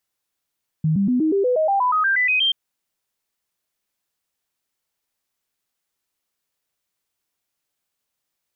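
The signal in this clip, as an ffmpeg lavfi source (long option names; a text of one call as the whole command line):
ffmpeg -f lavfi -i "aevalsrc='0.168*clip(min(mod(t,0.12),0.12-mod(t,0.12))/0.005,0,1)*sin(2*PI*157*pow(2,floor(t/0.12)/3)*mod(t,0.12))':duration=1.68:sample_rate=44100" out.wav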